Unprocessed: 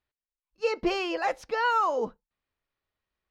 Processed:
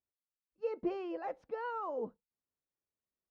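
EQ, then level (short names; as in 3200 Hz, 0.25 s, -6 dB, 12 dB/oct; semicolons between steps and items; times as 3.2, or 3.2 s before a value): band-pass 270 Hz, Q 0.61; -7.0 dB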